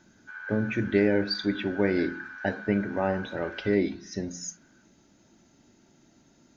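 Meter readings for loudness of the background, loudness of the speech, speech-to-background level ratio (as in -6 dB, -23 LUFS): -41.0 LUFS, -28.5 LUFS, 12.5 dB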